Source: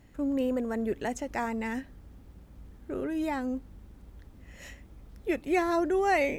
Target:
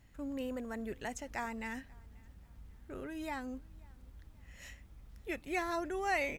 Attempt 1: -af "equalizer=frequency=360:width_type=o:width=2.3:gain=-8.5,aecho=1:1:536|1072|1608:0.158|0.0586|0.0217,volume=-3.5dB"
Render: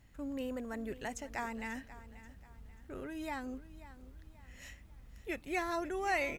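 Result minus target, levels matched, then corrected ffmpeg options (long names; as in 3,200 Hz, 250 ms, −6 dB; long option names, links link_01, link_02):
echo-to-direct +11 dB
-af "equalizer=frequency=360:width_type=o:width=2.3:gain=-8.5,aecho=1:1:536|1072:0.0447|0.0165,volume=-3.5dB"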